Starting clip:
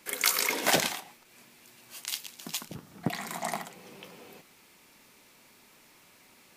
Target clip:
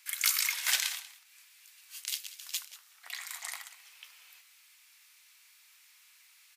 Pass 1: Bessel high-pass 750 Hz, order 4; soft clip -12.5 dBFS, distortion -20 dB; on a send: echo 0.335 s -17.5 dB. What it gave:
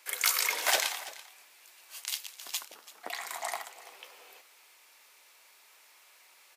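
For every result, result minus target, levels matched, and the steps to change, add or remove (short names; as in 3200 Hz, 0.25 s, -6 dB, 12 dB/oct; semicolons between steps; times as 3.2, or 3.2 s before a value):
echo 0.146 s late; 1000 Hz band +10.5 dB
change: echo 0.189 s -17.5 dB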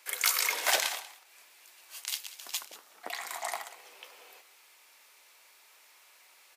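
1000 Hz band +10.5 dB
change: Bessel high-pass 2000 Hz, order 4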